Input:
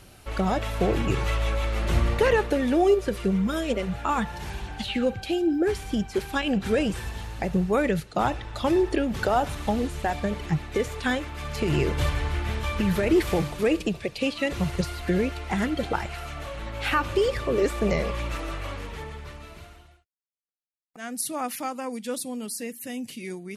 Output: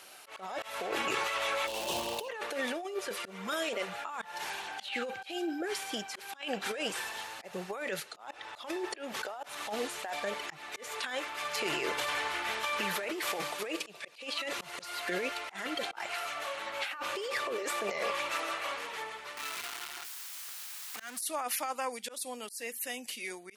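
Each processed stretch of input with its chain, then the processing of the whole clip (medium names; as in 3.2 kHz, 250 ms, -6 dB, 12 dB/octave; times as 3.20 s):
1.66–2.28 s: elliptic band-stop 1–2.7 kHz + bass shelf 430 Hz +2.5 dB + crackle 460 per s -31 dBFS
19.37–21.21 s: jump at every zero crossing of -34 dBFS + peaking EQ 590 Hz -11 dB 0.8 oct
whole clip: high-pass 680 Hz 12 dB/octave; compressor with a negative ratio -34 dBFS, ratio -1; slow attack 190 ms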